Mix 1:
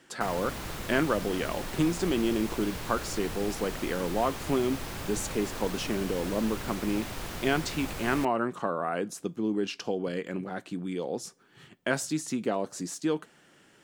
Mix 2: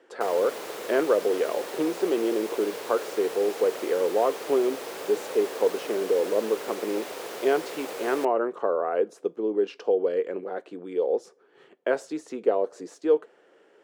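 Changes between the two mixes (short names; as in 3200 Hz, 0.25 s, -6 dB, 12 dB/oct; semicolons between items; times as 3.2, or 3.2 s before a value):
speech: add LPF 1500 Hz 6 dB/oct; master: add resonant high-pass 450 Hz, resonance Q 3.7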